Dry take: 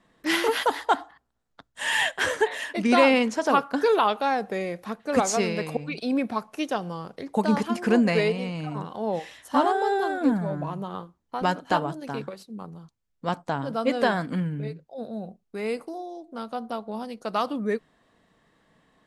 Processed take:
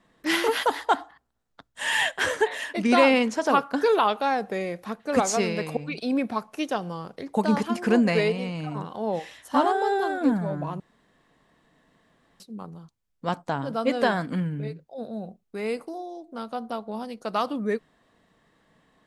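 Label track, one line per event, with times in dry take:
10.800000	12.400000	fill with room tone

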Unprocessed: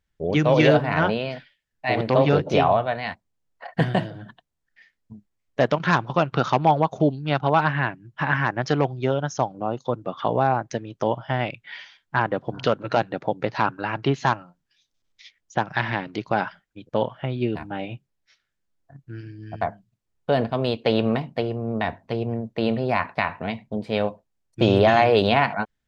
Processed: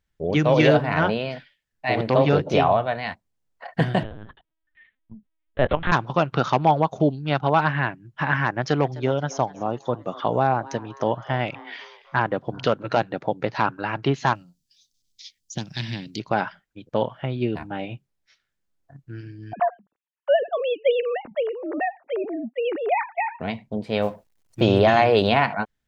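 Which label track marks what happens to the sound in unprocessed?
4.030000	5.920000	linear-prediction vocoder at 8 kHz pitch kept
8.510000	12.270000	echo with shifted repeats 256 ms, feedback 50%, per repeat +140 Hz, level −20 dB
14.350000	16.200000	drawn EQ curve 230 Hz 0 dB, 860 Hz −19 dB, 1,300 Hz −20 dB, 4,600 Hz +10 dB
19.530000	23.400000	three sine waves on the formant tracks
24.020000	24.610000	mu-law and A-law mismatch coded by mu

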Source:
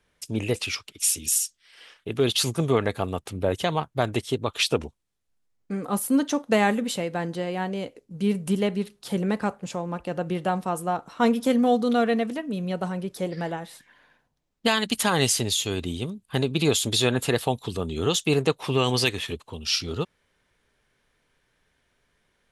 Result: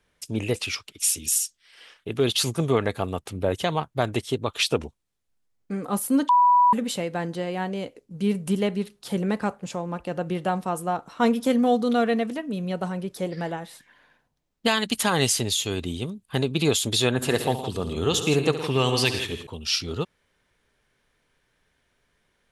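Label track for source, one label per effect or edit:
6.290000	6.730000	beep over 982 Hz −13.5 dBFS
17.100000	19.470000	multi-tap delay 70/114/163 ms −12.5/−13/−11.5 dB

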